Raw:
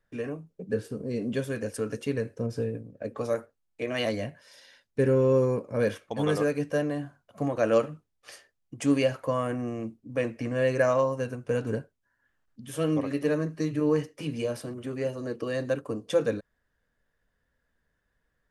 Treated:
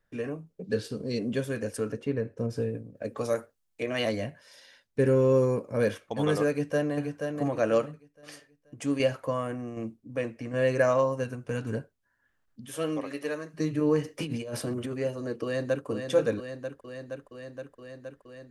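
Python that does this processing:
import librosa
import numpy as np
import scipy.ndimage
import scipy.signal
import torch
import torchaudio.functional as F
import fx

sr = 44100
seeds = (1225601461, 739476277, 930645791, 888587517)

y = fx.peak_eq(x, sr, hz=4200.0, db=13.0, octaves=1.2, at=(0.64, 1.19))
y = fx.lowpass(y, sr, hz=1500.0, slope=6, at=(1.92, 2.38))
y = fx.high_shelf(y, sr, hz=3600.0, db=6.5, at=(2.95, 3.83))
y = fx.high_shelf(y, sr, hz=fx.line((5.05, 5300.0), (5.86, 7600.0)), db=5.5, at=(5.05, 5.86), fade=0.02)
y = fx.echo_throw(y, sr, start_s=6.49, length_s=0.46, ms=480, feedback_pct=35, wet_db=-5.5)
y = fx.tremolo_shape(y, sr, shape='saw_down', hz=1.3, depth_pct=50, at=(7.46, 10.63))
y = fx.dynamic_eq(y, sr, hz=510.0, q=1.0, threshold_db=-39.0, ratio=4.0, max_db=-7, at=(11.23, 11.75))
y = fx.highpass(y, sr, hz=fx.line((12.65, 290.0), (13.53, 1200.0)), slope=6, at=(12.65, 13.53), fade=0.02)
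y = fx.over_compress(y, sr, threshold_db=-36.0, ratio=-1.0, at=(14.04, 14.92), fade=0.02)
y = fx.echo_throw(y, sr, start_s=15.43, length_s=0.43, ms=470, feedback_pct=80, wet_db=-6.5)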